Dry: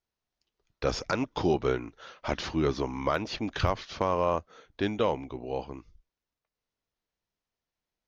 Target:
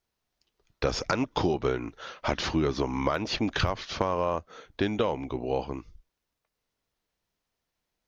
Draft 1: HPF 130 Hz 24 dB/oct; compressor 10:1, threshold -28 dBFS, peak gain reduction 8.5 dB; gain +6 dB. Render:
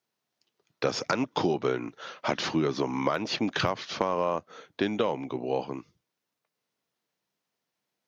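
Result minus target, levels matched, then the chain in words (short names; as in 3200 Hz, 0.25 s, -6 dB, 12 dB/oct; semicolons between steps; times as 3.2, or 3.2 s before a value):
125 Hz band -4.0 dB
compressor 10:1, threshold -28 dBFS, peak gain reduction 8.5 dB; gain +6 dB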